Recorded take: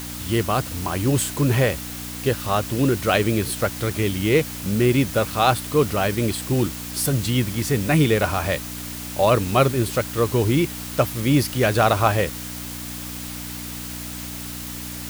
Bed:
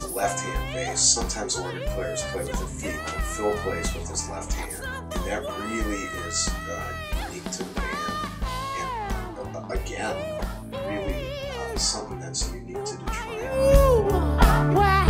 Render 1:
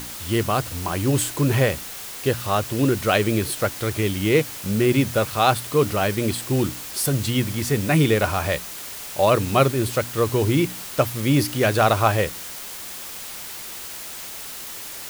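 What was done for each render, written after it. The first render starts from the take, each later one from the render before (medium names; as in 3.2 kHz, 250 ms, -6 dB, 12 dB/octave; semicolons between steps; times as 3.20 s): de-hum 60 Hz, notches 5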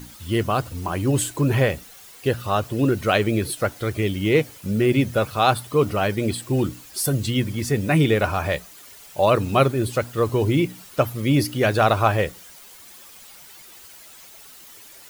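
noise reduction 12 dB, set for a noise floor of -35 dBFS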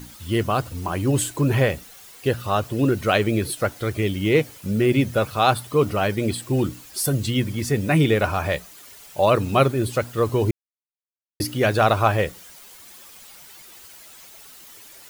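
10.51–11.40 s: mute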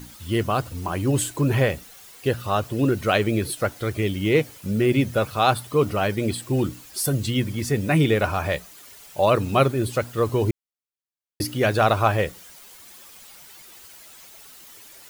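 trim -1 dB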